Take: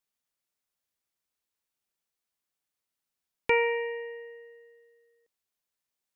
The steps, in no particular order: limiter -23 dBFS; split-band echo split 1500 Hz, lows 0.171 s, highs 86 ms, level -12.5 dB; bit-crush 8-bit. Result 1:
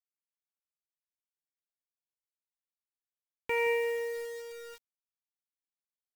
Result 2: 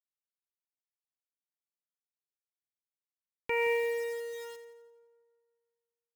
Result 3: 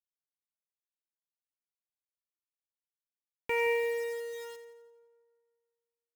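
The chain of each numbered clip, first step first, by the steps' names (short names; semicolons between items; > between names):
limiter > split-band echo > bit-crush; bit-crush > limiter > split-band echo; limiter > bit-crush > split-band echo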